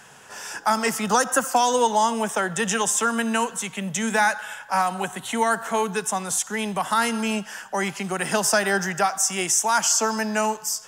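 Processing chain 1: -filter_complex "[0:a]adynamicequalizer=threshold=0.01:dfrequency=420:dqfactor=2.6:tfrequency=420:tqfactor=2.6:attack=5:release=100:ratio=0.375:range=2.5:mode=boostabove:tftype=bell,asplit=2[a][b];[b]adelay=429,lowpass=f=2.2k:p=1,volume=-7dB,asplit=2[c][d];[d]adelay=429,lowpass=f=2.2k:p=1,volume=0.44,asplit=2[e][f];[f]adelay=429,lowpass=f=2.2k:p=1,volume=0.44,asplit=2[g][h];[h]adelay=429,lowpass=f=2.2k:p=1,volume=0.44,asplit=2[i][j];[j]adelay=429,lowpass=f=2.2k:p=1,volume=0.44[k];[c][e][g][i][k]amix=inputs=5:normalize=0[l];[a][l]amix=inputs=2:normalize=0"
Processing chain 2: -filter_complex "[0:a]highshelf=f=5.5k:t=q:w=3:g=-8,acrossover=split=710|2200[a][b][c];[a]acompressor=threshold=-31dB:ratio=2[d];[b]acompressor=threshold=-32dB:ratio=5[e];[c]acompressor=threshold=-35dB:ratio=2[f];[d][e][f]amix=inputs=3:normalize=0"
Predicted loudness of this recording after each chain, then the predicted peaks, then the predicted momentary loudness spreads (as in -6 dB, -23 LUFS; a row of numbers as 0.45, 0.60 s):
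-21.5, -28.5 LUFS; -6.5, -12.5 dBFS; 7, 4 LU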